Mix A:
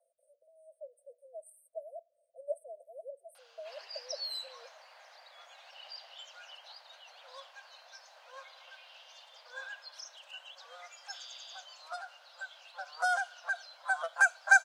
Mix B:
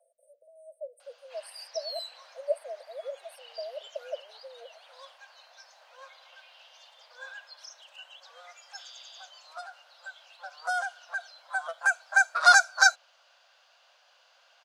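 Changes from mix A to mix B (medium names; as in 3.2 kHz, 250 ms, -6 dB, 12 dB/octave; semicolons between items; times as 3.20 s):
speech +7.5 dB; background: entry -2.35 s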